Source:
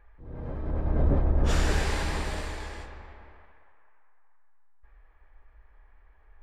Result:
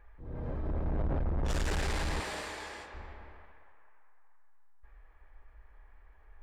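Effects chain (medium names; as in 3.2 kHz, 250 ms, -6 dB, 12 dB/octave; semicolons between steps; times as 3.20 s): 2.20–2.94 s: high-pass 450 Hz 6 dB/octave; saturation -27.5 dBFS, distortion -7 dB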